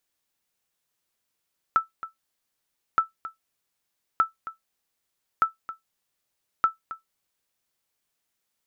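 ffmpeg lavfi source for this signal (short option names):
-f lavfi -i "aevalsrc='0.282*(sin(2*PI*1320*mod(t,1.22))*exp(-6.91*mod(t,1.22)/0.14)+0.178*sin(2*PI*1320*max(mod(t,1.22)-0.27,0))*exp(-6.91*max(mod(t,1.22)-0.27,0)/0.14))':d=6.1:s=44100"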